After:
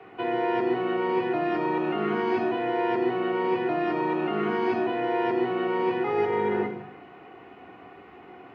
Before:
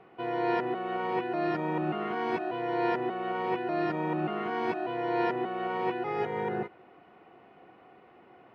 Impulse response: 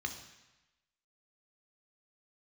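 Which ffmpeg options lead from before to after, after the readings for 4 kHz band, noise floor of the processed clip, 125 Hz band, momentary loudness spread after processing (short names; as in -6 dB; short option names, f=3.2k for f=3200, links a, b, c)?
+4.5 dB, -48 dBFS, +0.5 dB, 2 LU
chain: -filter_complex "[0:a]acrossover=split=140|550[a][b][c];[a]acompressor=threshold=-56dB:ratio=4[d];[b]acompressor=threshold=-32dB:ratio=4[e];[c]acompressor=threshold=-38dB:ratio=4[f];[d][e][f]amix=inputs=3:normalize=0[g];[1:a]atrim=start_sample=2205[h];[g][h]afir=irnorm=-1:irlink=0,volume=7.5dB"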